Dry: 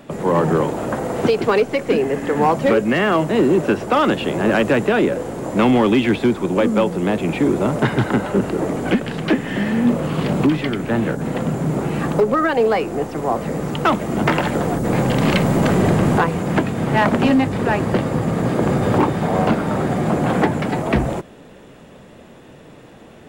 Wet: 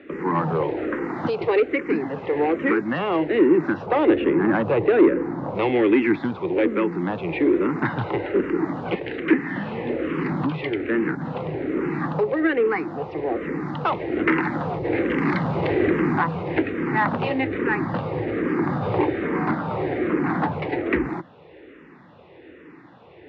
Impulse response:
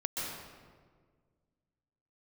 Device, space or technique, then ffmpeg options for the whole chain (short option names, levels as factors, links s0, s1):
barber-pole phaser into a guitar amplifier: -filter_complex "[0:a]asettb=1/sr,asplit=3[s0][s1][s2];[s0]atrim=end=3.864[s3];[s1]atrim=start=3.86:end=5.55,asetpts=PTS-STARTPTS,afade=t=in:d=0.004:c=qsin,afade=t=out:st=1.686:d=0.004:c=qsin,tiltshelf=f=1300:g=5.5[s4];[s2]atrim=start=5.546[s5];[s3][s4]acrossfade=d=0.004:c1=hsin:c2=qsin[s6];[s6][s5]acrossfade=d=0.004:c1=qsin:c2=hsin,asplit=2[s7][s8];[s8]afreqshift=-1.2[s9];[s7][s9]amix=inputs=2:normalize=1,asoftclip=type=tanh:threshold=0.282,highpass=100,equalizer=f=130:t=q:w=4:g=-6,equalizer=f=210:t=q:w=4:g=-9,equalizer=f=330:t=q:w=4:g=6,equalizer=f=640:t=q:w=4:g=-7,equalizer=f=2000:t=q:w=4:g=5,equalizer=f=3200:t=q:w=4:g=-6,lowpass=f=3500:w=0.5412,lowpass=f=3500:w=1.3066"